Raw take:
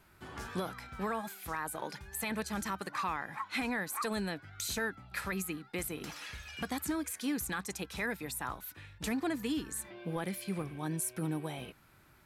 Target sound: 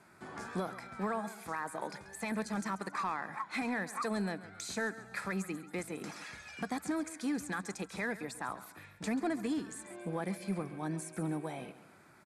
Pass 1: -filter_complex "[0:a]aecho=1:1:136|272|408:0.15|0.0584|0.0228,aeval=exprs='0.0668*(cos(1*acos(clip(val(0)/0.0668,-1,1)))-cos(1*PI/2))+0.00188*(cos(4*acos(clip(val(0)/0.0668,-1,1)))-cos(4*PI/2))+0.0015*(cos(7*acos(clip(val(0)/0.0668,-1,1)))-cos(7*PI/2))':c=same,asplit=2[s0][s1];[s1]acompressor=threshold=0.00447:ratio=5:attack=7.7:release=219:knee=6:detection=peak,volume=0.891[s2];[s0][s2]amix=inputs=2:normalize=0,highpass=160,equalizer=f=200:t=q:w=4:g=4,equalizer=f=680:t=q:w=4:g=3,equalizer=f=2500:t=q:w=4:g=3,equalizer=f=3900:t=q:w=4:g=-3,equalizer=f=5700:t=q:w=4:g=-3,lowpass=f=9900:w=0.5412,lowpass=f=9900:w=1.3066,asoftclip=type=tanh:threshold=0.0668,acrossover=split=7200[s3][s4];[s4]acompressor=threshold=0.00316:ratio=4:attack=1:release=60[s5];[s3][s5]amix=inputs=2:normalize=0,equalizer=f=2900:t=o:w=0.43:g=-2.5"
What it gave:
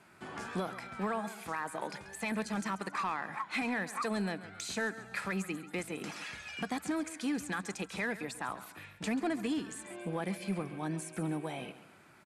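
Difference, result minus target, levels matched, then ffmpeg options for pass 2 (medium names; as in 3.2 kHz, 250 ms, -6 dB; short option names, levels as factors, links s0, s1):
compression: peak gain reduction -7 dB; 4 kHz band +3.0 dB
-filter_complex "[0:a]aecho=1:1:136|272|408:0.15|0.0584|0.0228,aeval=exprs='0.0668*(cos(1*acos(clip(val(0)/0.0668,-1,1)))-cos(1*PI/2))+0.00188*(cos(4*acos(clip(val(0)/0.0668,-1,1)))-cos(4*PI/2))+0.0015*(cos(7*acos(clip(val(0)/0.0668,-1,1)))-cos(7*PI/2))':c=same,asplit=2[s0][s1];[s1]acompressor=threshold=0.00168:ratio=5:attack=7.7:release=219:knee=6:detection=peak,volume=0.891[s2];[s0][s2]amix=inputs=2:normalize=0,highpass=160,equalizer=f=200:t=q:w=4:g=4,equalizer=f=680:t=q:w=4:g=3,equalizer=f=2500:t=q:w=4:g=3,equalizer=f=3900:t=q:w=4:g=-3,equalizer=f=5700:t=q:w=4:g=-3,lowpass=f=9900:w=0.5412,lowpass=f=9900:w=1.3066,asoftclip=type=tanh:threshold=0.0668,acrossover=split=7200[s3][s4];[s4]acompressor=threshold=0.00316:ratio=4:attack=1:release=60[s5];[s3][s5]amix=inputs=2:normalize=0,equalizer=f=2900:t=o:w=0.43:g=-11.5"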